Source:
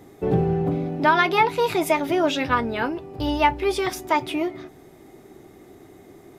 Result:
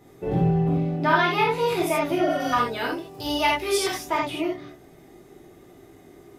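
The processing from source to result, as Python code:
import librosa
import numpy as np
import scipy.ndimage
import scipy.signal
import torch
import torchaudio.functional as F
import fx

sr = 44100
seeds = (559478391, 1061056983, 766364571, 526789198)

y = fx.spec_repair(x, sr, seeds[0], start_s=2.24, length_s=0.26, low_hz=710.0, high_hz=8200.0, source='before')
y = fx.bass_treble(y, sr, bass_db=-6, treble_db=13, at=(2.4, 3.91))
y = fx.rev_gated(y, sr, seeds[1], gate_ms=110, shape='flat', drr_db=-4.0)
y = y * librosa.db_to_amplitude(-7.0)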